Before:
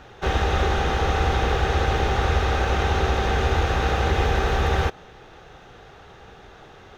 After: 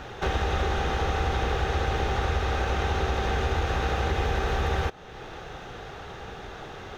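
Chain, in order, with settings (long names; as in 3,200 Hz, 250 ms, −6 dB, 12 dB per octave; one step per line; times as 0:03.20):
downward compressor 2 to 1, threshold −38 dBFS, peak gain reduction 12 dB
level +6 dB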